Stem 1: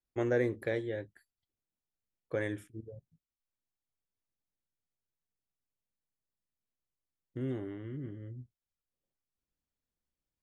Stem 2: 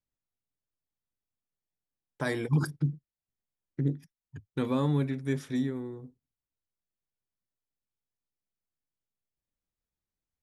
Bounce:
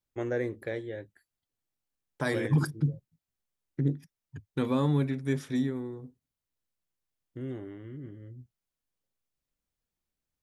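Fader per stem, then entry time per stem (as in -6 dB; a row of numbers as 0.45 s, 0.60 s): -1.5 dB, +1.0 dB; 0.00 s, 0.00 s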